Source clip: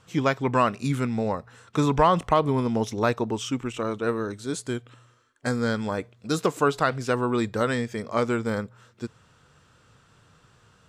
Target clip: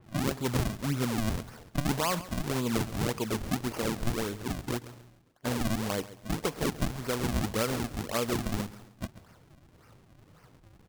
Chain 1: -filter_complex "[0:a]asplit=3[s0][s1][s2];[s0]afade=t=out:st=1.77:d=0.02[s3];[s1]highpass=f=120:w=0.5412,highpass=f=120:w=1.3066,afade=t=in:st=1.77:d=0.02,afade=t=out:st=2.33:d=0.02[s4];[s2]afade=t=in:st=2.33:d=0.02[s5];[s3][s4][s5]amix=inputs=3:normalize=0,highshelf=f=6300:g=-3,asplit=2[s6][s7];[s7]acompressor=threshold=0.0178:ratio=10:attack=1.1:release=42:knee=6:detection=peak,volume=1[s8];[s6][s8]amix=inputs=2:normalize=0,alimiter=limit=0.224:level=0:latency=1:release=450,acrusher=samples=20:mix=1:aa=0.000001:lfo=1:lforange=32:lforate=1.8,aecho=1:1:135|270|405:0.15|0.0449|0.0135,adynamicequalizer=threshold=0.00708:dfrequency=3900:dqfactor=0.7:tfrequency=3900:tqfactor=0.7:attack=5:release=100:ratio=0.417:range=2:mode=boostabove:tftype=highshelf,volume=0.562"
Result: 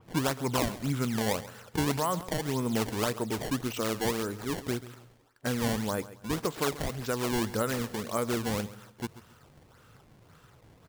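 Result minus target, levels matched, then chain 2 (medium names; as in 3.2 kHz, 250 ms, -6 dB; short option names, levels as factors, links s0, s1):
decimation with a swept rate: distortion -10 dB
-filter_complex "[0:a]asplit=3[s0][s1][s2];[s0]afade=t=out:st=1.77:d=0.02[s3];[s1]highpass=f=120:w=0.5412,highpass=f=120:w=1.3066,afade=t=in:st=1.77:d=0.02,afade=t=out:st=2.33:d=0.02[s4];[s2]afade=t=in:st=2.33:d=0.02[s5];[s3][s4][s5]amix=inputs=3:normalize=0,highshelf=f=6300:g=-3,asplit=2[s6][s7];[s7]acompressor=threshold=0.0178:ratio=10:attack=1.1:release=42:knee=6:detection=peak,volume=1[s8];[s6][s8]amix=inputs=2:normalize=0,alimiter=limit=0.224:level=0:latency=1:release=450,acrusher=samples=57:mix=1:aa=0.000001:lfo=1:lforange=91.2:lforate=1.8,aecho=1:1:135|270|405:0.15|0.0449|0.0135,adynamicequalizer=threshold=0.00708:dfrequency=3900:dqfactor=0.7:tfrequency=3900:tqfactor=0.7:attack=5:release=100:ratio=0.417:range=2:mode=boostabove:tftype=highshelf,volume=0.562"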